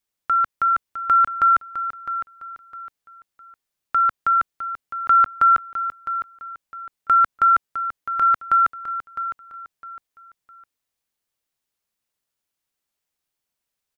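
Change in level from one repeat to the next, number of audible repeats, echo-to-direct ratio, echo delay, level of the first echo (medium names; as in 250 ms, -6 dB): -10.0 dB, 3, -10.5 dB, 658 ms, -11.0 dB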